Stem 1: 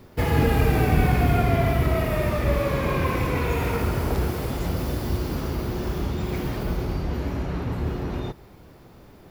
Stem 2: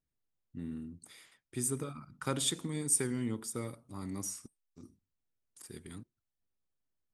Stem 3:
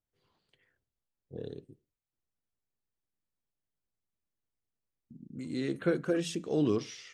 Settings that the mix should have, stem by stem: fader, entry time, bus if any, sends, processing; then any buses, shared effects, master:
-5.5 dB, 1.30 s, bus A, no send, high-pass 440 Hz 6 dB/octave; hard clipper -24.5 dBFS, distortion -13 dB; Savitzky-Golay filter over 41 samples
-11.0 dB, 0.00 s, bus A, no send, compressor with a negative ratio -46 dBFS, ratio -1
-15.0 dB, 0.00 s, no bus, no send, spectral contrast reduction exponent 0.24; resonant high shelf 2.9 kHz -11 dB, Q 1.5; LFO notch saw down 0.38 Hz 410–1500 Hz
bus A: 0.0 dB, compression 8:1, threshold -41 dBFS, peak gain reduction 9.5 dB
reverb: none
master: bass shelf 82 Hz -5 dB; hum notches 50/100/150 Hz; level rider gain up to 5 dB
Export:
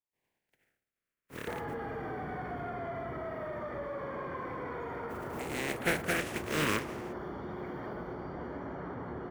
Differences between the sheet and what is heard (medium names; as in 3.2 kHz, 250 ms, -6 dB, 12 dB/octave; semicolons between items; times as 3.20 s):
stem 2: muted; stem 3 -15.0 dB -> -3.5 dB; master: missing hum notches 50/100/150 Hz